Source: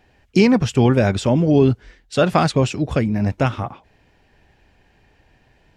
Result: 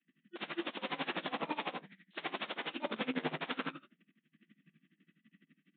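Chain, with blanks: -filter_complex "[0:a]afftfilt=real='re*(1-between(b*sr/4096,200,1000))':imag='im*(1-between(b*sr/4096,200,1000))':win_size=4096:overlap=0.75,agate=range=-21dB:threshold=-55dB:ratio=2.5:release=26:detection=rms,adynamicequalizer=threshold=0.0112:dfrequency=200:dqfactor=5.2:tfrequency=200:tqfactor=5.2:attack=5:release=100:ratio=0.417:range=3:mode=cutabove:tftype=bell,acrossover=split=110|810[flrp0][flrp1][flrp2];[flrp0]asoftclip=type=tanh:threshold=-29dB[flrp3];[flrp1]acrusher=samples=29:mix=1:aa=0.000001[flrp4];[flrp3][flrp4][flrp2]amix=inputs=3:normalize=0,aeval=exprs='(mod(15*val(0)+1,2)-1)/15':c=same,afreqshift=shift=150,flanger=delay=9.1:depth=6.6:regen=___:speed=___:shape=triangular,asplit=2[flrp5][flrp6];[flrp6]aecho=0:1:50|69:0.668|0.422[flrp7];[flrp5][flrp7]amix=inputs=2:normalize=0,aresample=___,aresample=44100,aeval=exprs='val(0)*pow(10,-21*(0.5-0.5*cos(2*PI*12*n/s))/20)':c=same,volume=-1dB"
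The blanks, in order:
74, 1.2, 8000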